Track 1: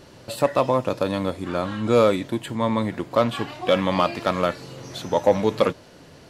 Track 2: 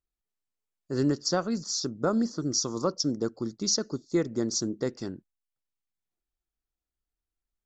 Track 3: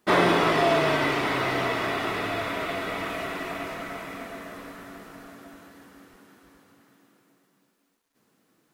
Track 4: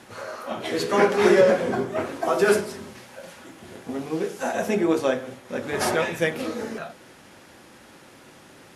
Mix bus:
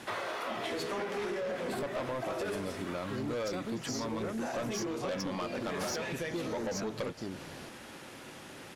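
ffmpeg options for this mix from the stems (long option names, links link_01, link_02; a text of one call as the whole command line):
ffmpeg -i stem1.wav -i stem2.wav -i stem3.wav -i stem4.wav -filter_complex "[0:a]adelay=1400,volume=-1.5dB[link_01];[1:a]adelay=2200,volume=0dB[link_02];[2:a]highpass=590,volume=-9.5dB[link_03];[3:a]equalizer=frequency=2900:width=1.5:gain=2.5,alimiter=limit=-14.5dB:level=0:latency=1:release=166,volume=0.5dB[link_04];[link_01][link_02][link_03][link_04]amix=inputs=4:normalize=0,asoftclip=type=tanh:threshold=-20dB,acompressor=threshold=-34dB:ratio=6" out.wav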